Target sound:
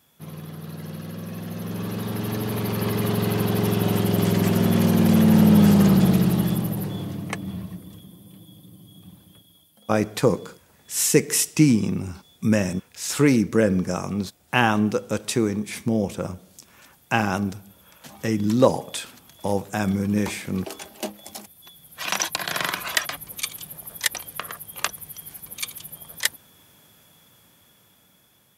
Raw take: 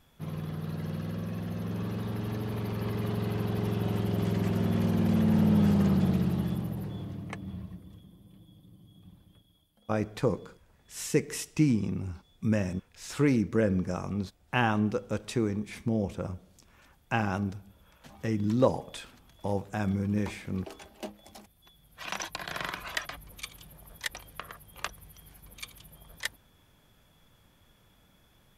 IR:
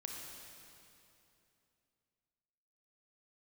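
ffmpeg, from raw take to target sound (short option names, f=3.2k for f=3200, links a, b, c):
-af "highpass=120,highshelf=f=5.6k:g=11.5,dynaudnorm=f=570:g=7:m=10dB"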